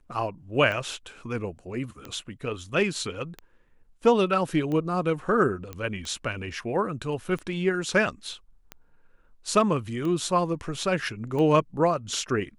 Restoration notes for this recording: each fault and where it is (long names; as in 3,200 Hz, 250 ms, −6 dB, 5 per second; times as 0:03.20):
scratch tick 45 rpm −21 dBFS
0:05.73: click −21 dBFS